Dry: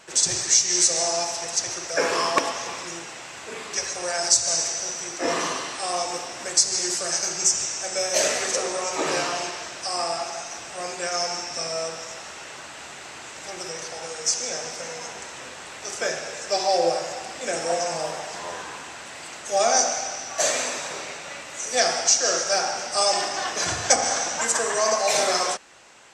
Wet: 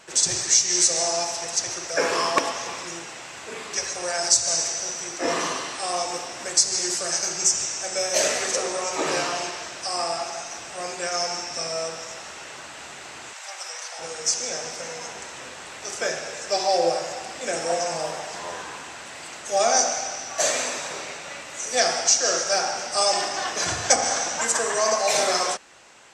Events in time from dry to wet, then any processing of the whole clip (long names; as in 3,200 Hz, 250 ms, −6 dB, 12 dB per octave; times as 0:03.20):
0:13.33–0:13.99: high-pass filter 680 Hz 24 dB per octave